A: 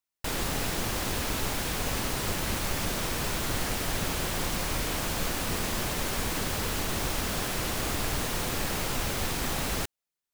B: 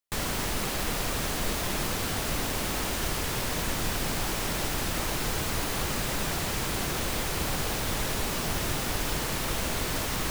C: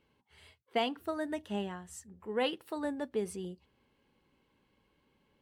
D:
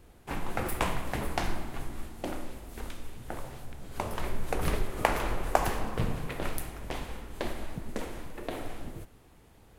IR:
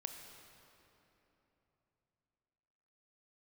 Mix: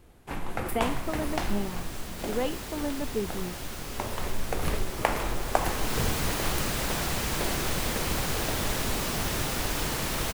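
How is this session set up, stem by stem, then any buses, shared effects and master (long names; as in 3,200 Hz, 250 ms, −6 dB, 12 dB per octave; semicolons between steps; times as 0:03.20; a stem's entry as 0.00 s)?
−12.0 dB, 1.95 s, no send, no processing
−9.0 dB, 0.70 s, no send, automatic gain control gain up to 9 dB; automatic ducking −11 dB, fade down 1.50 s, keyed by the third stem
−0.5 dB, 0.00 s, no send, spectral tilt −2.5 dB per octave
0.0 dB, 0.00 s, no send, no processing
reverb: not used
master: no processing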